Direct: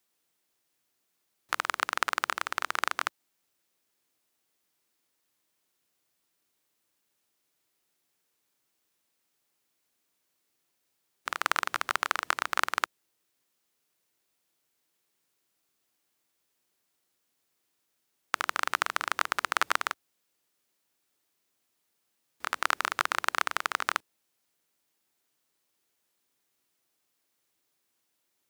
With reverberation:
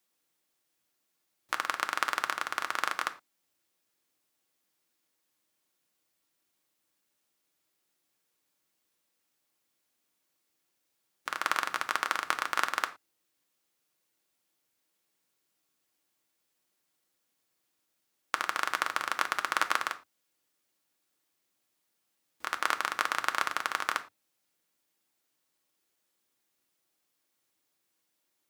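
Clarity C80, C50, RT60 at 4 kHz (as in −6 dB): 21.5 dB, 16.0 dB, can't be measured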